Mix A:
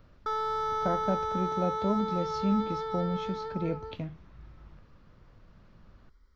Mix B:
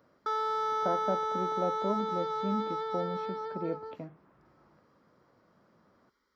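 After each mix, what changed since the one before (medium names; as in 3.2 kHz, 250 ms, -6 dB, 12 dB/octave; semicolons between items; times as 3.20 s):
speech: add low-pass 1.4 kHz 12 dB/octave; master: add high-pass 270 Hz 12 dB/octave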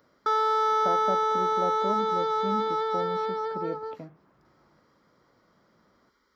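background +7.0 dB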